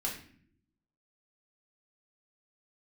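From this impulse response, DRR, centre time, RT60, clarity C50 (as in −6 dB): −3.0 dB, 26 ms, 0.60 s, 7.0 dB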